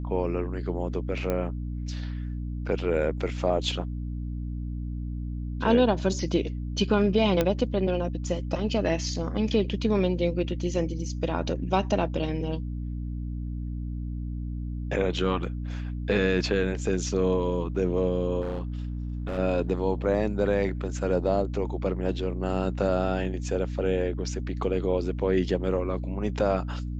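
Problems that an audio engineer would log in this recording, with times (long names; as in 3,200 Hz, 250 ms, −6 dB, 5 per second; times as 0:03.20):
mains hum 60 Hz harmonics 5 −32 dBFS
0:01.30: click −15 dBFS
0:07.41: click −10 dBFS
0:18.41–0:19.39: clipping −27 dBFS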